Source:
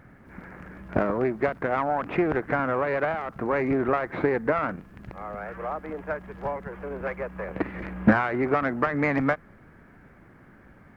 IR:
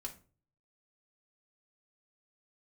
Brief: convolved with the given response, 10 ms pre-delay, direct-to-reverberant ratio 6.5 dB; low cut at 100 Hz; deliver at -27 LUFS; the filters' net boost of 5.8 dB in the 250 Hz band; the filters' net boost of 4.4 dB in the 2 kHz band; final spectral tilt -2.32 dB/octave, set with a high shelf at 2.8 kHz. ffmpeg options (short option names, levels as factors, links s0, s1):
-filter_complex "[0:a]highpass=100,equalizer=f=250:t=o:g=7,equalizer=f=2000:t=o:g=4,highshelf=f=2800:g=4.5,asplit=2[s0][s1];[1:a]atrim=start_sample=2205,adelay=10[s2];[s1][s2]afir=irnorm=-1:irlink=0,volume=0.631[s3];[s0][s3]amix=inputs=2:normalize=0,volume=0.596"